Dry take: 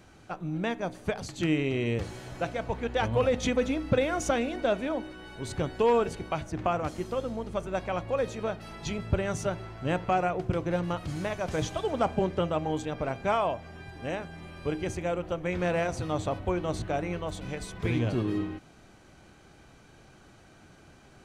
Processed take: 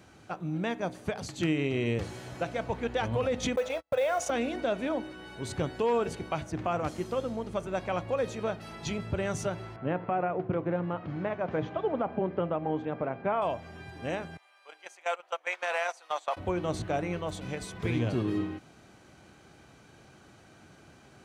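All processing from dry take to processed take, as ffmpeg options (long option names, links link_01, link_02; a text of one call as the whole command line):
ffmpeg -i in.wav -filter_complex "[0:a]asettb=1/sr,asplit=3[link_01][link_02][link_03];[link_01]atrim=end=3.564[link_04];[link_02]atrim=start=3.56:end=4.3,asetpts=PTS-STARTPTS,afade=type=in:duration=0.004:curve=qsin,afade=type=out:start_time=0.736:duration=0.004:curve=qsin,lowshelf=frequency=410:width_type=q:width=3:gain=-11,agate=range=-41dB:threshold=-37dB:ratio=16:release=100:detection=peak,acrusher=bits=8:mode=log:mix=0:aa=0.000001[link_05];[link_03]atrim=start=4.296[link_06];[link_04][link_05]acrossfade=duration=0.004:curve1=hsin:curve2=qsin[link_07];[link_07][link_06]acrossfade=duration=0.004:curve1=qsin:curve2=hsin,asettb=1/sr,asplit=3[link_08][link_09][link_10];[link_08]atrim=end=9.764[link_11];[link_09]atrim=start=9.76:end=13.42,asetpts=PTS-STARTPTS,afade=type=in:duration=0.004:curve=qsin,afade=type=out:start_time=3.656:duration=0.004:curve=qsin,highpass=140,lowpass=2400,aemphasis=mode=reproduction:type=75fm[link_12];[link_10]atrim=start=13.416[link_13];[link_11][link_12]acrossfade=duration=0.004:curve1=hsin:curve2=qsin[link_14];[link_14][link_13]acrossfade=duration=0.004:curve1=qsin:curve2=hsin,asettb=1/sr,asplit=3[link_15][link_16][link_17];[link_15]atrim=end=14.374[link_18];[link_16]atrim=start=14.37:end=16.37,asetpts=PTS-STARTPTS,afade=type=in:duration=0.004:curve=qsin,afade=type=out:start_time=1.996:duration=0.004:curve=qsin,highpass=frequency=710:width=0.5412,highpass=frequency=710:width=1.3066,acontrast=74,agate=range=-18dB:threshold=-32dB:ratio=16:release=100:detection=peak[link_19];[link_17]atrim=start=16.366[link_20];[link_18][link_19]acrossfade=duration=0.004:curve1=hsin:curve2=qsin[link_21];[link_21][link_20]acrossfade=duration=0.004:curve1=qsin:curve2=hsin,highpass=74,alimiter=limit=-19.5dB:level=0:latency=1:release=97" out.wav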